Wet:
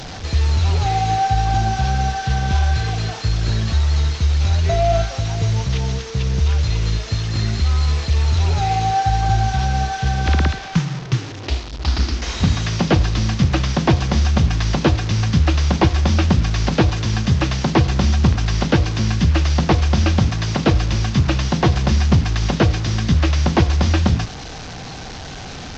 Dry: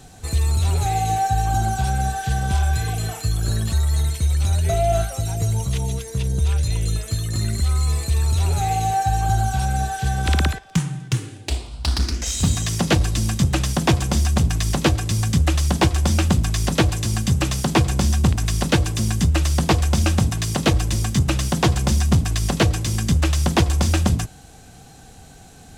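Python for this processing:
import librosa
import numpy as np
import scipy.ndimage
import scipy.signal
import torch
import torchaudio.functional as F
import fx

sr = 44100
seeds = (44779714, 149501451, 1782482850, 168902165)

y = fx.delta_mod(x, sr, bps=32000, step_db=-28.0)
y = y * 10.0 ** (2.5 / 20.0)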